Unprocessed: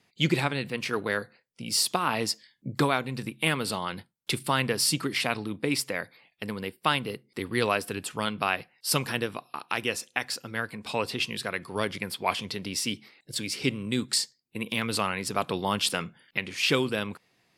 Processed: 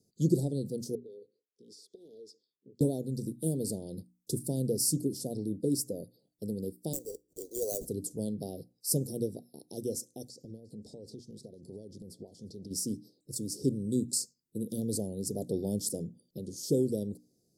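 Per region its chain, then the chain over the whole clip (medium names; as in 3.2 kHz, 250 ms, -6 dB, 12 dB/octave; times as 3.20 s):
0.95–2.81 s: two resonant band-passes 1.2 kHz, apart 3 oct + compression 12:1, threshold -43 dBFS
6.93–7.86 s: high-pass 450 Hz 24 dB/octave + sample-rate reducer 5.2 kHz
10.29–12.71 s: compression, threshold -38 dBFS + distance through air 60 m + delay 354 ms -23.5 dB
whole clip: inverse Chebyshev band-stop 1.1–2.6 kHz, stop band 60 dB; hum notches 60/120/180/240/300 Hz; dynamic bell 4 kHz, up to -6 dB, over -48 dBFS, Q 1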